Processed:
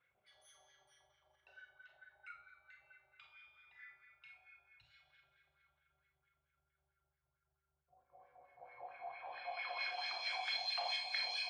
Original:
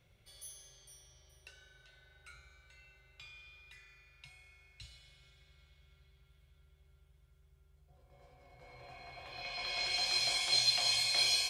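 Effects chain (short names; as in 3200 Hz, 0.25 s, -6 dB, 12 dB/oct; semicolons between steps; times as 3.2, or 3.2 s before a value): formant sharpening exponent 1.5; wah 4.5 Hz 730–1800 Hz, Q 4.8; Schroeder reverb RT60 0.34 s, combs from 28 ms, DRR 3.5 dB; gain +9.5 dB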